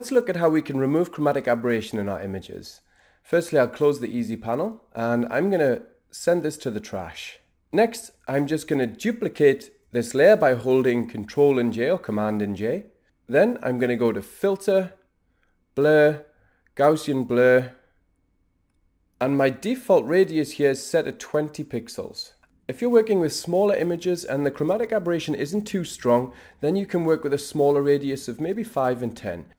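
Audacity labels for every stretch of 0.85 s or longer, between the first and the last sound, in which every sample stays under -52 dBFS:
17.850000	19.210000	silence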